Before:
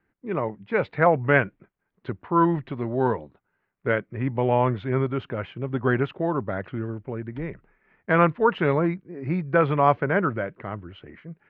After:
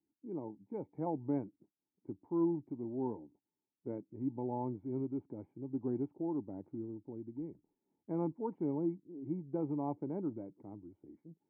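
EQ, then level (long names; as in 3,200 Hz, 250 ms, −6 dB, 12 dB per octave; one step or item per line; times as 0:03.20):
formant resonators in series u
high-pass filter 73 Hz
−4.5 dB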